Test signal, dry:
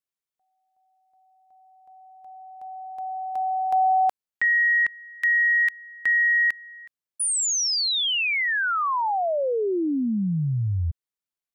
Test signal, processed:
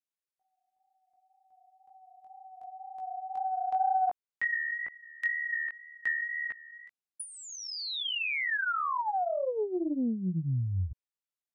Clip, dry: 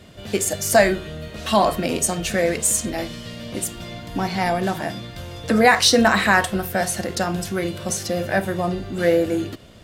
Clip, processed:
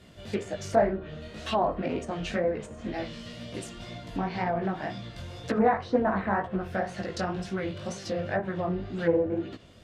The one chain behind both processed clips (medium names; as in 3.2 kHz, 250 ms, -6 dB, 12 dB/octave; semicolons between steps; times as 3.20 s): chorus 2 Hz, delay 15.5 ms, depth 6.8 ms; low-pass that closes with the level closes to 1 kHz, closed at -18.5 dBFS; loudspeaker Doppler distortion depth 0.25 ms; trim -4 dB